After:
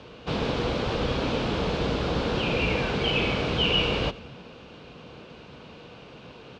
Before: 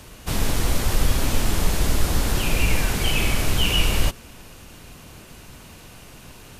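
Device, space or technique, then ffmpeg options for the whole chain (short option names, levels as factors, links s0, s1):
frequency-shifting delay pedal into a guitar cabinet: -filter_complex "[0:a]asplit=6[s0][s1][s2][s3][s4][s5];[s1]adelay=88,afreqshift=-50,volume=0.0891[s6];[s2]adelay=176,afreqshift=-100,volume=0.0525[s7];[s3]adelay=264,afreqshift=-150,volume=0.0309[s8];[s4]adelay=352,afreqshift=-200,volume=0.0184[s9];[s5]adelay=440,afreqshift=-250,volume=0.0108[s10];[s0][s6][s7][s8][s9][s10]amix=inputs=6:normalize=0,highpass=94,equalizer=f=95:t=q:w=4:g=-7,equalizer=f=480:t=q:w=4:g=8,equalizer=f=1900:t=q:w=4:g=-7,lowpass=f=4000:w=0.5412,lowpass=f=4000:w=1.3066"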